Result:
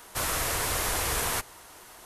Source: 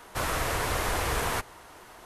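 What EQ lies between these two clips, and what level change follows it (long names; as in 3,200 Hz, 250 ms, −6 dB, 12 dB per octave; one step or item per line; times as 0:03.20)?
high-shelf EQ 3,900 Hz +11.5 dB
−3.0 dB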